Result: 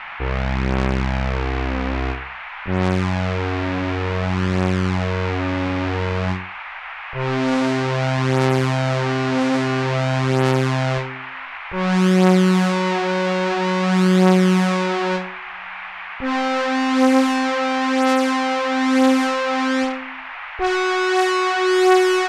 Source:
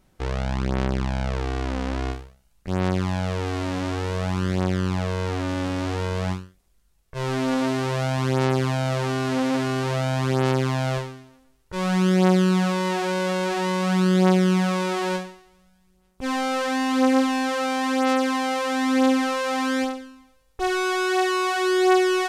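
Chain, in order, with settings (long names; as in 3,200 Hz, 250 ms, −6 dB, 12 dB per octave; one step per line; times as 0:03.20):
low-pass that shuts in the quiet parts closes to 980 Hz, open at −16 dBFS
noise in a band 760–2,500 Hz −37 dBFS
level +4 dB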